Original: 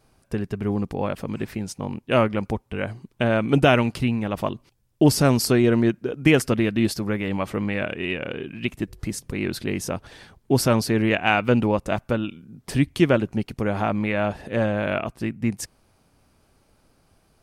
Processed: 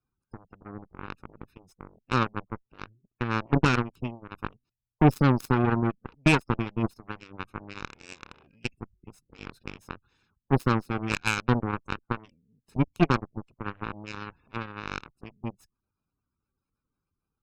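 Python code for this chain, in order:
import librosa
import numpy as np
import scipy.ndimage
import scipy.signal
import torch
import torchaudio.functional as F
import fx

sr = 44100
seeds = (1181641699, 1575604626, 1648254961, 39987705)

y = fx.lower_of_two(x, sr, delay_ms=0.78)
y = fx.spec_gate(y, sr, threshold_db=-20, keep='strong')
y = fx.cheby_harmonics(y, sr, harmonics=(7,), levels_db=(-16,), full_scale_db=-5.5)
y = y * 10.0 ** (-2.5 / 20.0)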